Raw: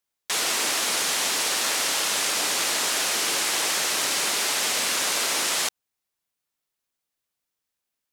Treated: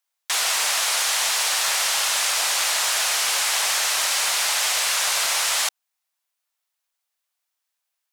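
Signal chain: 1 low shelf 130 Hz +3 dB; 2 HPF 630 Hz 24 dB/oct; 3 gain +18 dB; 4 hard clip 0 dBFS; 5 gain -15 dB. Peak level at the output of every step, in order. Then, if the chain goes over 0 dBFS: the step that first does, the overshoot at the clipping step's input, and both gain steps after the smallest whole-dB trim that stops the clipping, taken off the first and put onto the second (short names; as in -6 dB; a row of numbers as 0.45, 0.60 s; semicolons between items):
-11.0, -11.5, +6.5, 0.0, -15.0 dBFS; step 3, 6.5 dB; step 3 +11 dB, step 5 -8 dB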